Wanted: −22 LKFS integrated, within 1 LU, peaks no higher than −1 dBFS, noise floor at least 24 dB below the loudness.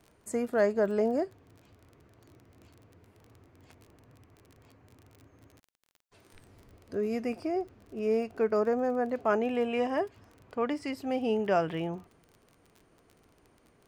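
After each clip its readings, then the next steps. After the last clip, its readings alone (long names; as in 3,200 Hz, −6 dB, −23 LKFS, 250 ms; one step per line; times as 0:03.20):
crackle rate 28 per second; integrated loudness −30.5 LKFS; sample peak −14.5 dBFS; target loudness −22.0 LKFS
→ click removal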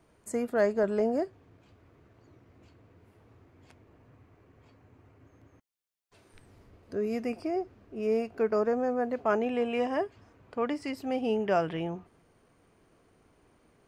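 crackle rate 0 per second; integrated loudness −30.5 LKFS; sample peak −14.5 dBFS; target loudness −22.0 LKFS
→ level +8.5 dB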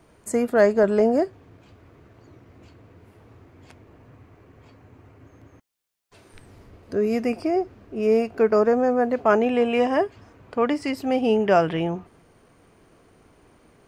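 integrated loudness −22.0 LKFS; sample peak −6.0 dBFS; background noise floor −57 dBFS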